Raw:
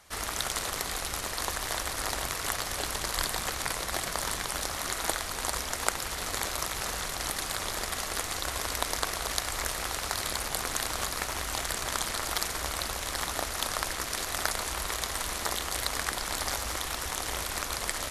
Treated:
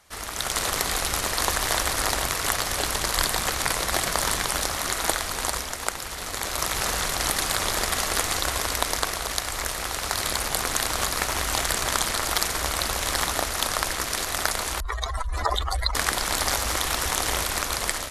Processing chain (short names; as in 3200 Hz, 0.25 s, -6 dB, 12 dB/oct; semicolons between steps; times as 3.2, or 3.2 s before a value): 14.8–15.95 spectral contrast raised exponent 3.2; AGC gain up to 10 dB; gain -1 dB